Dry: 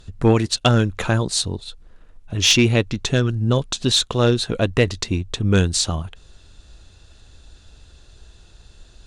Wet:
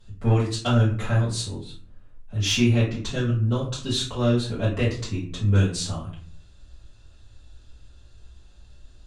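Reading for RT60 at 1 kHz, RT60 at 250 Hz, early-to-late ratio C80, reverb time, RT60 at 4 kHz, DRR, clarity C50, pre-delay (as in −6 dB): 0.45 s, 0.80 s, 10.5 dB, 0.50 s, 0.25 s, −10.5 dB, 6.5 dB, 4 ms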